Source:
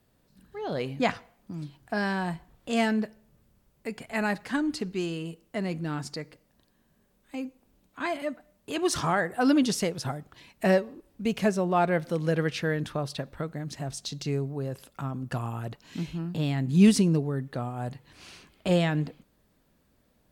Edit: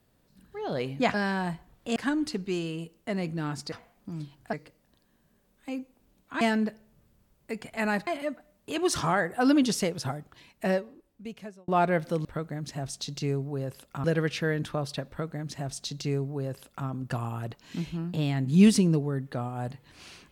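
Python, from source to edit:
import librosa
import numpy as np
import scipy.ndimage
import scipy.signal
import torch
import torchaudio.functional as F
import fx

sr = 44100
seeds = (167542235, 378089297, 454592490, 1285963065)

y = fx.edit(x, sr, fx.move(start_s=1.14, length_s=0.81, to_s=6.19),
    fx.move(start_s=2.77, length_s=1.66, to_s=8.07),
    fx.fade_out_span(start_s=10.08, length_s=1.6),
    fx.duplicate(start_s=13.29, length_s=1.79, to_s=12.25), tone=tone)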